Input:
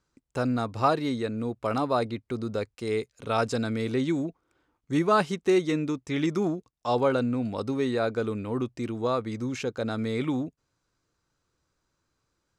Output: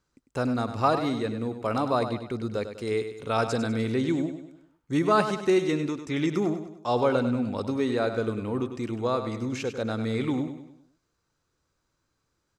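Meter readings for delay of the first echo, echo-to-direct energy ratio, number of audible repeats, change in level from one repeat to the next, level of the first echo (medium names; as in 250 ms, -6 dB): 99 ms, -8.5 dB, 4, -7.0 dB, -9.5 dB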